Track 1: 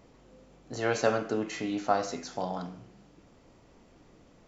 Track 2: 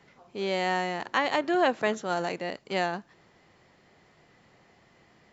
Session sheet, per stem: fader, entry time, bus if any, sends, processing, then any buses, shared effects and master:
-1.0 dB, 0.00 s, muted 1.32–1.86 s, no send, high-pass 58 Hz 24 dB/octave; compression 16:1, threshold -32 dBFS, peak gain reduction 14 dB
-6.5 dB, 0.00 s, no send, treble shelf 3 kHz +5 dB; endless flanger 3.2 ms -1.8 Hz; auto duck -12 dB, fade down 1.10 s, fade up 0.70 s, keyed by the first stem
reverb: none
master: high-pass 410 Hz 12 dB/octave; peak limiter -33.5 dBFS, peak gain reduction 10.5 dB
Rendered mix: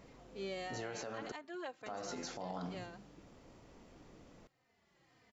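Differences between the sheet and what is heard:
stem 1: missing high-pass 58 Hz 24 dB/octave; master: missing high-pass 410 Hz 12 dB/octave

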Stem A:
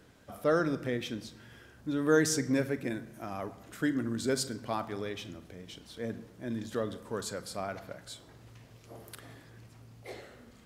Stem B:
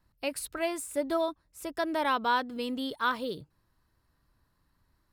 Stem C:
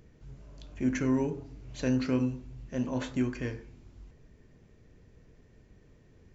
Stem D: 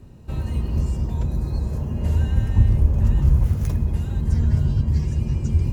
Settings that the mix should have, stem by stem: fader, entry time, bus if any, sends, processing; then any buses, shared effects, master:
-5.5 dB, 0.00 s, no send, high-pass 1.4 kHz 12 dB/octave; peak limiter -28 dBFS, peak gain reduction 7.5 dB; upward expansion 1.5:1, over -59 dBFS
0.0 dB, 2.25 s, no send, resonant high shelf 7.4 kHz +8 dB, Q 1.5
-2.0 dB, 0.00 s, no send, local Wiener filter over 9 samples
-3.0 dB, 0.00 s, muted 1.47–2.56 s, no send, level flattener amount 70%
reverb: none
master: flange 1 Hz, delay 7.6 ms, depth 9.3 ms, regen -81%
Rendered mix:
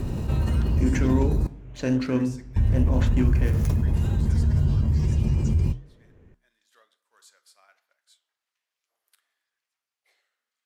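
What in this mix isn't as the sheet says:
stem B: muted; stem C -2.0 dB -> +8.5 dB

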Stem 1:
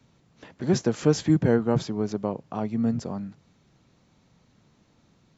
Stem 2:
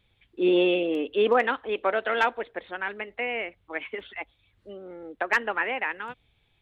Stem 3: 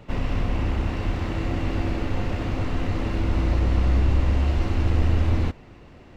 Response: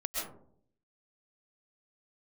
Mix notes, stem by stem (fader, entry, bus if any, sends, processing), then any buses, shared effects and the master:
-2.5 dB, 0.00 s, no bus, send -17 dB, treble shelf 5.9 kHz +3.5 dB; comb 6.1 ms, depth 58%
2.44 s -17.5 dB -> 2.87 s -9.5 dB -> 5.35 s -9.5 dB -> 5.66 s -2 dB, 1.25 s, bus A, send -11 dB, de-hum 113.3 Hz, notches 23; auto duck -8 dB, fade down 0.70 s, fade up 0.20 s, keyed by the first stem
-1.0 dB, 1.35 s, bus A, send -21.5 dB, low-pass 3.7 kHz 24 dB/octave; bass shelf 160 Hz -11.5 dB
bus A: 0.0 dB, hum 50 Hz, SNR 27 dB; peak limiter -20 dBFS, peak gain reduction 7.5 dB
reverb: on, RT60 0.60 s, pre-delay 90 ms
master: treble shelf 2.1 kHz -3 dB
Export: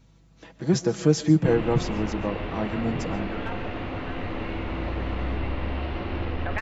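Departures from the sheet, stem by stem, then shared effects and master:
stem 2: send -11 dB -> -18 dB; master: missing treble shelf 2.1 kHz -3 dB

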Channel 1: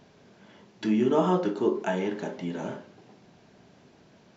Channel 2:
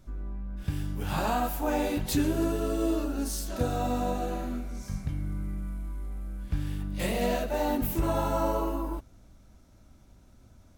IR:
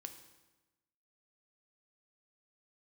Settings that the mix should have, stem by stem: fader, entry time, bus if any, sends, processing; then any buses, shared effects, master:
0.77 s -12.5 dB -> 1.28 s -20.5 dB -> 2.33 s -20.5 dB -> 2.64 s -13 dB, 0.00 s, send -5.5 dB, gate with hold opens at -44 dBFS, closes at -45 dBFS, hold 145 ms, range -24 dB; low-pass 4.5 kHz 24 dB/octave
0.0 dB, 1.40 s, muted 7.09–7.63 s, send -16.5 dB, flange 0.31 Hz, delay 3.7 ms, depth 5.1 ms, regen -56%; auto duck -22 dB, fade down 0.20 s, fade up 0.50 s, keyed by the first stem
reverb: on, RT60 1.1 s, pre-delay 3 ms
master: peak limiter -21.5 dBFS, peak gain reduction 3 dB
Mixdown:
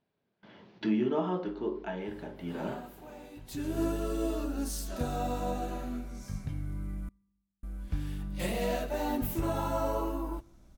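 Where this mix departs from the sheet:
stem 1 -12.5 dB -> -3.0 dB; master: missing peak limiter -21.5 dBFS, peak gain reduction 3 dB

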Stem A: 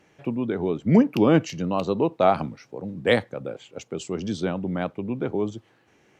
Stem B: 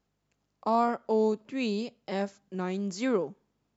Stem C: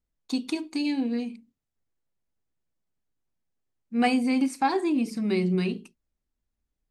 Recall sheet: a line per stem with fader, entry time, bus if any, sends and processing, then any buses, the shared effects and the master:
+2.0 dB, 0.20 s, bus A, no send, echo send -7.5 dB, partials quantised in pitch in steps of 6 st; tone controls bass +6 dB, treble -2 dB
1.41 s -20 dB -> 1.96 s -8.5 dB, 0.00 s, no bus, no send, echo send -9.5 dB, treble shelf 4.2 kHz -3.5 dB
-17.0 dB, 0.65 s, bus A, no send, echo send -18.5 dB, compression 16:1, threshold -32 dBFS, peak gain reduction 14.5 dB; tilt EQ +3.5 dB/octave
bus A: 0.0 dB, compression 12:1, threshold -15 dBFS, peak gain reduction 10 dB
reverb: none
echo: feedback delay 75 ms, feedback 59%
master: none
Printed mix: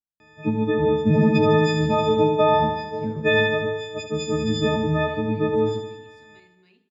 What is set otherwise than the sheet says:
stem B -20.0 dB -> -30.0 dB; stem C: entry 0.65 s -> 1.05 s; master: extra distance through air 160 m

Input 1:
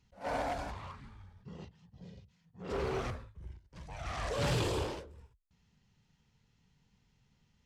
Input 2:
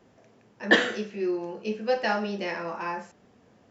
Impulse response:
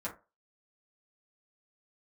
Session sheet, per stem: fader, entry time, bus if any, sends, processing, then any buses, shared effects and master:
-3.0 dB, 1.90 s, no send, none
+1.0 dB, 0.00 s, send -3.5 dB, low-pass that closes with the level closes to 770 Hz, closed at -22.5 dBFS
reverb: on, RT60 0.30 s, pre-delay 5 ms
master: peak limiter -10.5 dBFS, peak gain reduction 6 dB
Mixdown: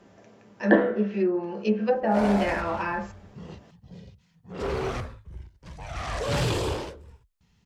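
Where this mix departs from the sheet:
stem 1 -3.0 dB -> +6.0 dB; master: missing peak limiter -10.5 dBFS, peak gain reduction 6 dB

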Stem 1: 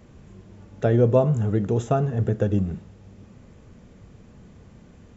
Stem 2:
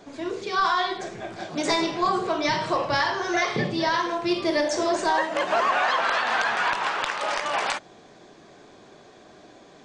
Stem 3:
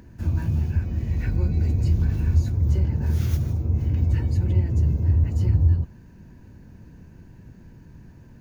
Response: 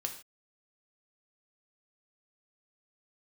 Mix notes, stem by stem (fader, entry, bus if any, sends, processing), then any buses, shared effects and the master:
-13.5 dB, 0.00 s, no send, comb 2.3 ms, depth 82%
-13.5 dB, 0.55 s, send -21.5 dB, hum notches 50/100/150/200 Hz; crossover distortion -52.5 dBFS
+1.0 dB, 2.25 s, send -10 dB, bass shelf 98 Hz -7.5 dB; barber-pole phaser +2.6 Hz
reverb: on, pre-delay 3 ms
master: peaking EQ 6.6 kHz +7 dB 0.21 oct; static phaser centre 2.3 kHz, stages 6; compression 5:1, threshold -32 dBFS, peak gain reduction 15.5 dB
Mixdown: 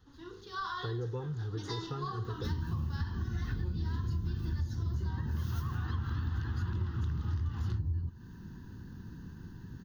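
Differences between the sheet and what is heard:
stem 2: entry 0.55 s -> 0.00 s; stem 3: missing barber-pole phaser +2.6 Hz

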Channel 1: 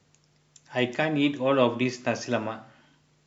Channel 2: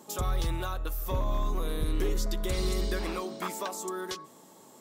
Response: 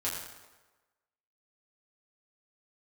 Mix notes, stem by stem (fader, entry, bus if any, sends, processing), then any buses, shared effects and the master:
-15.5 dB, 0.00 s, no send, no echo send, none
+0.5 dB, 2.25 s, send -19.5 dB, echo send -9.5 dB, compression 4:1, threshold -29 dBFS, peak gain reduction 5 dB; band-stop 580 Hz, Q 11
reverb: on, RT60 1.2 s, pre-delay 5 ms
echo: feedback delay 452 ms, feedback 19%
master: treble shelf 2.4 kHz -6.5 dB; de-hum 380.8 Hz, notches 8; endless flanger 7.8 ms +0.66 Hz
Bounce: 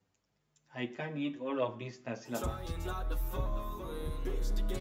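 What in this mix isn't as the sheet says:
stem 1 -15.5 dB -> -8.5 dB; stem 2: missing band-stop 580 Hz, Q 11

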